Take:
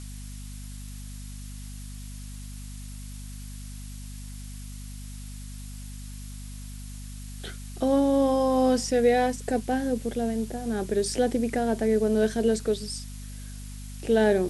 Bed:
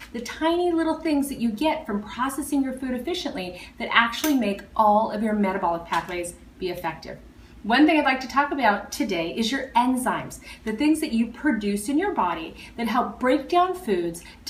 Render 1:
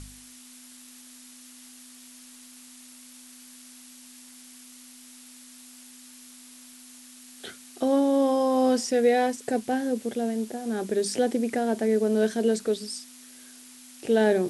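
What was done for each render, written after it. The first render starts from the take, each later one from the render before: de-hum 50 Hz, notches 4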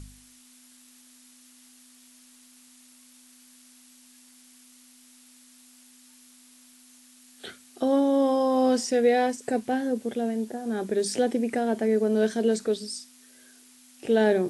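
noise print and reduce 6 dB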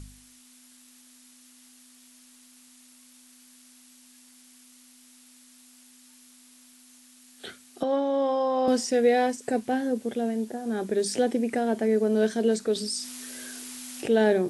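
7.83–8.68 s: band-pass 400–4200 Hz; 12.75–14.10 s: level flattener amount 50%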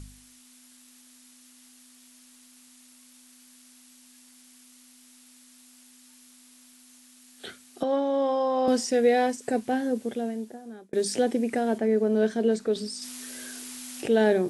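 10.01–10.93 s: fade out linear; 11.78–13.02 s: treble shelf 3.8 kHz -8.5 dB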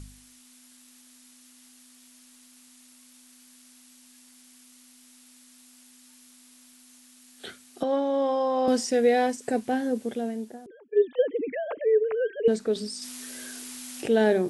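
10.66–12.48 s: formants replaced by sine waves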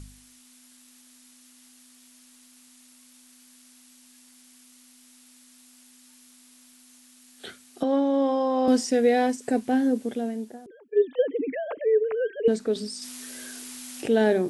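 dynamic bell 270 Hz, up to +7 dB, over -45 dBFS, Q 5.8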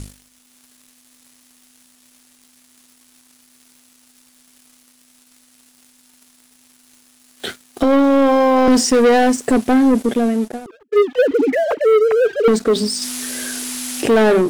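waveshaping leveller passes 3; level rider gain up to 3 dB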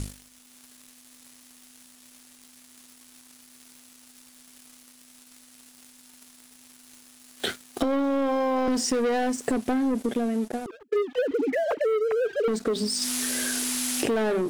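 compression 10:1, threshold -23 dBFS, peak gain reduction 13.5 dB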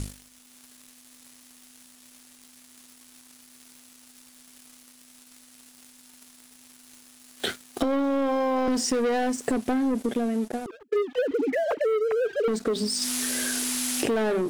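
no audible change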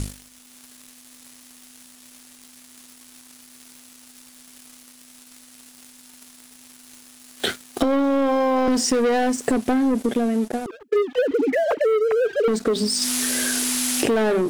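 trim +5 dB

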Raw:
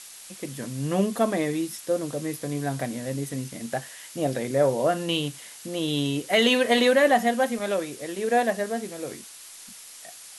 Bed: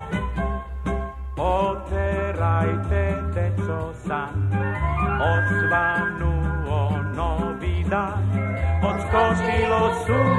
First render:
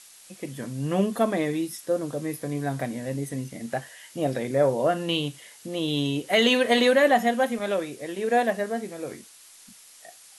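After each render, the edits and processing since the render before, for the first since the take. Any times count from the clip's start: noise print and reduce 6 dB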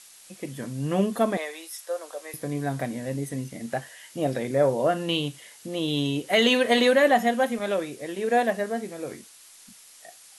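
1.37–2.34 s: high-pass 570 Hz 24 dB/octave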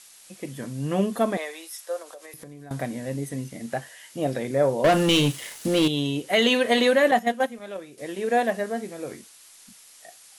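2.02–2.71 s: compression 16:1, threshold -38 dBFS; 4.84–5.88 s: waveshaping leveller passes 3; 7.11–7.98 s: gate -23 dBFS, range -10 dB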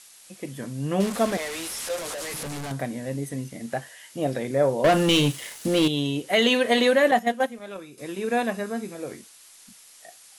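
1.00–2.72 s: one-bit delta coder 64 kbps, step -26.5 dBFS; 7.71–8.95 s: comb 0.8 ms, depth 45%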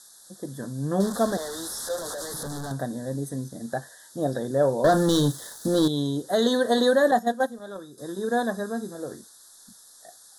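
elliptic band-stop 1.7–3.6 kHz, stop band 70 dB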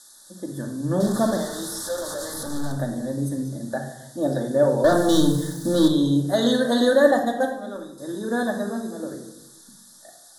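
simulated room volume 2600 m³, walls furnished, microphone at 2.5 m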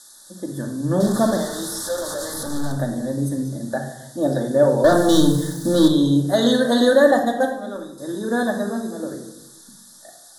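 trim +3 dB; peak limiter -3 dBFS, peak gain reduction 2 dB

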